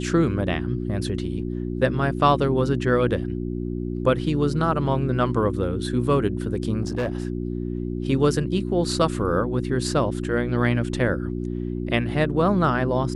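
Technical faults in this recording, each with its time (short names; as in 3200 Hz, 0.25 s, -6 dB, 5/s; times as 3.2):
hum 60 Hz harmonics 6 -28 dBFS
6.82–7.25 clipped -20.5 dBFS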